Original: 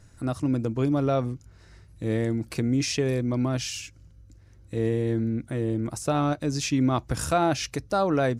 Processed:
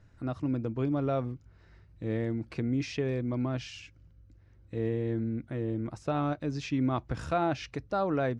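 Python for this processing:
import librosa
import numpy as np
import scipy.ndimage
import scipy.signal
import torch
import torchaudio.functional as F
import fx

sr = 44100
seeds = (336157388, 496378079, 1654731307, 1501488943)

y = scipy.signal.sosfilt(scipy.signal.butter(2, 3300.0, 'lowpass', fs=sr, output='sos'), x)
y = y * 10.0 ** (-5.5 / 20.0)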